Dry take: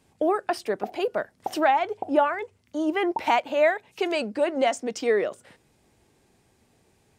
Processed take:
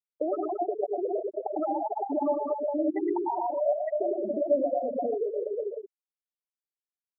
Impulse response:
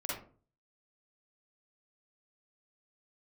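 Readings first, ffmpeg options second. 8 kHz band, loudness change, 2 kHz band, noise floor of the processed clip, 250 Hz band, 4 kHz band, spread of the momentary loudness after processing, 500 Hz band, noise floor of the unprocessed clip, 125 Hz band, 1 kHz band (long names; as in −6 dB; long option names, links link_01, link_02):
below −35 dB, −4.0 dB, below −25 dB, below −85 dBFS, −2.5 dB, below −40 dB, 5 LU, −2.0 dB, −65 dBFS, can't be measured, −6.0 dB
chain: -filter_complex "[0:a]aecho=1:1:100|215|347.2|499.3|674.2:0.631|0.398|0.251|0.158|0.1,acompressor=threshold=-29dB:ratio=20,lowpass=2900,asplit=2[link_01][link_02];[1:a]atrim=start_sample=2205,lowpass=7500,adelay=63[link_03];[link_02][link_03]afir=irnorm=-1:irlink=0,volume=-5.5dB[link_04];[link_01][link_04]amix=inputs=2:normalize=0,afftfilt=real='re*gte(hypot(re,im),0.126)':imag='im*gte(hypot(re,im),0.126)':win_size=1024:overlap=0.75,volume=3.5dB"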